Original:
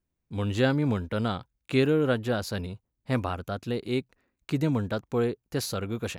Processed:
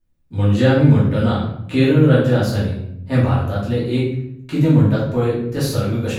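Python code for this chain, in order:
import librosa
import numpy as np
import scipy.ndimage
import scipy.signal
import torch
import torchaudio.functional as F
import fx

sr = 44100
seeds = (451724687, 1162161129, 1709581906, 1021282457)

y = fx.low_shelf(x, sr, hz=180.0, db=6.5)
y = fx.room_shoebox(y, sr, seeds[0], volume_m3=170.0, walls='mixed', distance_m=2.6)
y = F.gain(torch.from_numpy(y), -2.0).numpy()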